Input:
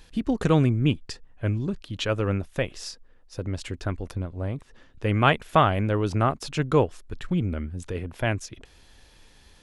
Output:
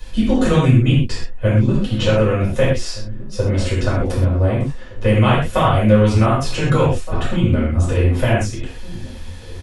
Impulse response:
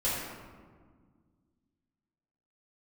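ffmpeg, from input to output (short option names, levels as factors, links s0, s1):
-filter_complex "[0:a]asplit=2[s0][s1];[s1]adelay=1516,volume=0.0794,highshelf=f=4000:g=-34.1[s2];[s0][s2]amix=inputs=2:normalize=0,acrossover=split=110|1500|3800[s3][s4][s5][s6];[s3]acompressor=threshold=0.0112:ratio=4[s7];[s4]acompressor=threshold=0.0355:ratio=4[s8];[s5]acompressor=threshold=0.00708:ratio=4[s9];[s6]acompressor=threshold=0.00631:ratio=4[s10];[s7][s8][s9][s10]amix=inputs=4:normalize=0[s11];[1:a]atrim=start_sample=2205,atrim=end_sample=6174[s12];[s11][s12]afir=irnorm=-1:irlink=0,volume=2.24"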